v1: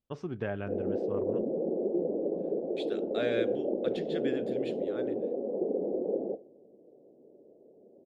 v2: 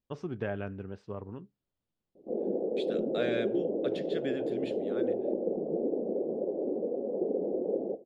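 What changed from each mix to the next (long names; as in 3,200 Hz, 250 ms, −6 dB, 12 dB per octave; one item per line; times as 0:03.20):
background: entry +1.60 s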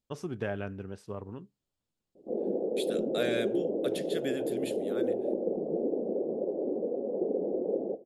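master: remove high-frequency loss of the air 170 metres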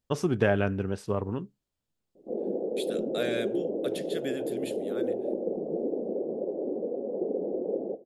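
first voice +10.0 dB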